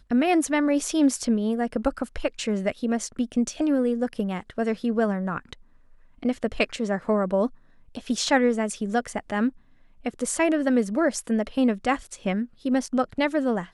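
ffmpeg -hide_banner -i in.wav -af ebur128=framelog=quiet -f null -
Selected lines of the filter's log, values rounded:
Integrated loudness:
  I:         -25.3 LUFS
  Threshold: -35.6 LUFS
Loudness range:
  LRA:         2.8 LU
  Threshold: -46.0 LUFS
  LRA low:   -27.5 LUFS
  LRA high:  -24.7 LUFS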